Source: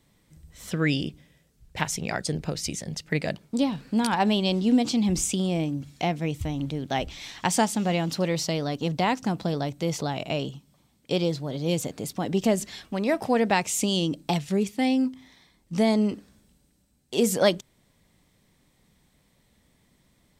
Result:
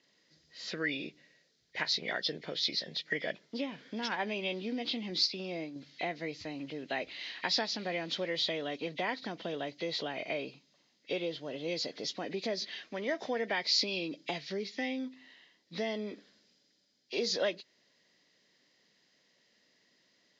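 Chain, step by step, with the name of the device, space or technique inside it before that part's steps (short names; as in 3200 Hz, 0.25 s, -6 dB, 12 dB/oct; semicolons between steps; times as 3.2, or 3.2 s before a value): 5.26–5.76 expander -22 dBFS; hearing aid with frequency lowering (nonlinear frequency compression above 1800 Hz 1.5:1; compressor 2.5:1, threshold -26 dBFS, peak gain reduction 7.5 dB; speaker cabinet 380–5600 Hz, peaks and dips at 830 Hz -8 dB, 1200 Hz -6 dB, 1900 Hz +5 dB, 2700 Hz -4 dB, 4200 Hz +3 dB); high shelf 4900 Hz +9.5 dB; gain -2.5 dB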